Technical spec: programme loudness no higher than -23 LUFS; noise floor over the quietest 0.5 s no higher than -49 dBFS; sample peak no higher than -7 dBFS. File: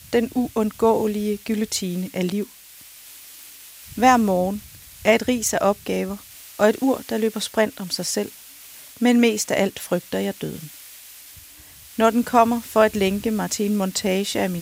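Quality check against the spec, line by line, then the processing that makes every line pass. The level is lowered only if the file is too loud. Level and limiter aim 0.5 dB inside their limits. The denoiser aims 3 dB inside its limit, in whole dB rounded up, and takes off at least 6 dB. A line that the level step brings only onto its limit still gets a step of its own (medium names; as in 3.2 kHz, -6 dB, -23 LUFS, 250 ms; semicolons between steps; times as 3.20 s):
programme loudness -21.5 LUFS: fail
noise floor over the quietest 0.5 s -45 dBFS: fail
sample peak -2.5 dBFS: fail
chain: noise reduction 6 dB, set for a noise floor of -45 dBFS; trim -2 dB; peak limiter -7.5 dBFS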